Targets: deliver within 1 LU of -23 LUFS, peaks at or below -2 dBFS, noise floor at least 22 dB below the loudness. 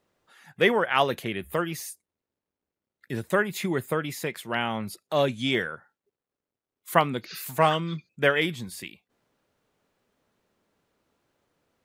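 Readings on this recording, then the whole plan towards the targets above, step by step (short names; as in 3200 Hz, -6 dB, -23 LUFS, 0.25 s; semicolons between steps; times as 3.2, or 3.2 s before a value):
loudness -26.5 LUFS; peak -2.5 dBFS; loudness target -23.0 LUFS
-> gain +3.5 dB; limiter -2 dBFS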